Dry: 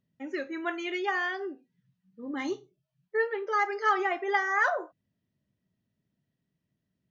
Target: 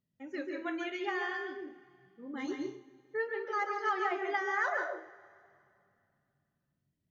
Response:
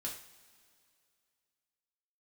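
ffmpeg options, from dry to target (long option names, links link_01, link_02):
-filter_complex "[0:a]asplit=2[link_01][link_02];[1:a]atrim=start_sample=2205,lowshelf=frequency=250:gain=11.5,adelay=137[link_03];[link_02][link_03]afir=irnorm=-1:irlink=0,volume=-3.5dB[link_04];[link_01][link_04]amix=inputs=2:normalize=0,volume=-7dB"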